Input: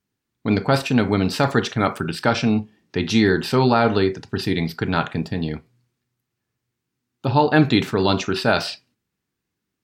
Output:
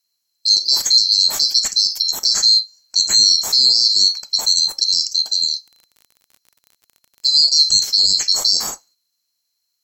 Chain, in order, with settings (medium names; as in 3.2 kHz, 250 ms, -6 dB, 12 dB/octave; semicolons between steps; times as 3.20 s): split-band scrambler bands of 4 kHz; treble shelf 2.2 kHz +8 dB; 5.53–7.43 s: crackle 40 per s -33 dBFS; peak limiter -2.5 dBFS, peak gain reduction 7 dB; treble shelf 5.1 kHz +7.5 dB; trim -3.5 dB